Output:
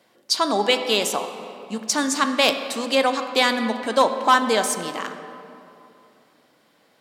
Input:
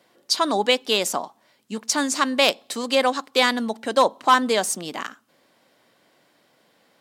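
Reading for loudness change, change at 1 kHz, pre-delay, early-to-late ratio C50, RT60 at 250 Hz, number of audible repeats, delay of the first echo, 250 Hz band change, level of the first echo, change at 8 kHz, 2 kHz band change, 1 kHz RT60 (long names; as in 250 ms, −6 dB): +0.5 dB, +0.5 dB, 4 ms, 8.5 dB, 3.0 s, no echo audible, no echo audible, +1.0 dB, no echo audible, 0.0 dB, +1.0 dB, 2.7 s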